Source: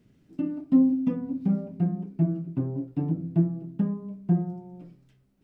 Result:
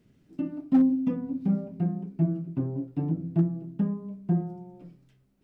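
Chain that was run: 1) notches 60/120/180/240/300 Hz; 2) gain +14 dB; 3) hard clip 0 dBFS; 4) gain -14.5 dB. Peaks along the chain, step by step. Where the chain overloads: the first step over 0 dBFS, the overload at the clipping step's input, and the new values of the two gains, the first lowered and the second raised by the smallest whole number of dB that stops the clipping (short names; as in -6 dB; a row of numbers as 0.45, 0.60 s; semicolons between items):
-10.5, +3.5, 0.0, -14.5 dBFS; step 2, 3.5 dB; step 2 +10 dB, step 4 -10.5 dB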